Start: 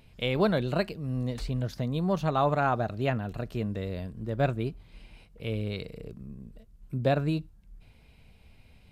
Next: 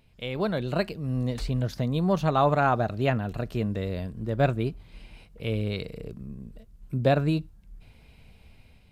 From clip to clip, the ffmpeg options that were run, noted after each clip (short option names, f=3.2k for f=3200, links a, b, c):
-af "dynaudnorm=f=270:g=5:m=8.5dB,volume=-5dB"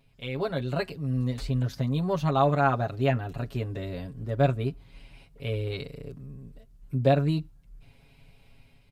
-af "aecho=1:1:7.3:0.92,volume=-4.5dB"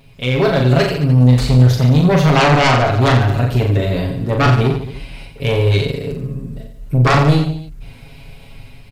-filter_complex "[0:a]aeval=exprs='0.316*sin(PI/2*3.98*val(0)/0.316)':c=same,asplit=2[a][b];[b]aecho=0:1:40|88|145.6|214.7|297.7:0.631|0.398|0.251|0.158|0.1[c];[a][c]amix=inputs=2:normalize=0"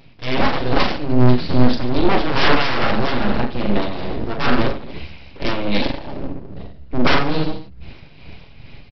-af "aresample=11025,aeval=exprs='abs(val(0))':c=same,aresample=44100,tremolo=f=2.4:d=0.56,volume=1.5dB"